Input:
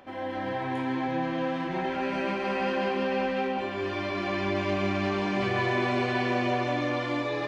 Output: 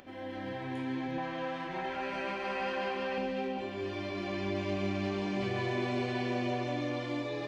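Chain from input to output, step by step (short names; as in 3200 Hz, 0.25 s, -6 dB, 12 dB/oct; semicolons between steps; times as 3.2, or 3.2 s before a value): bell 940 Hz -7.5 dB 1.7 oct, from 1.18 s 230 Hz, from 3.18 s 1300 Hz; upward compressor, threshold -46 dBFS; gain -4 dB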